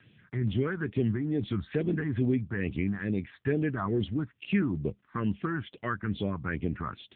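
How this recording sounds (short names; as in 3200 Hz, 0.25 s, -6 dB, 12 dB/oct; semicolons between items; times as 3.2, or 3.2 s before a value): phasing stages 4, 2.3 Hz, lowest notch 480–1400 Hz; AMR-NB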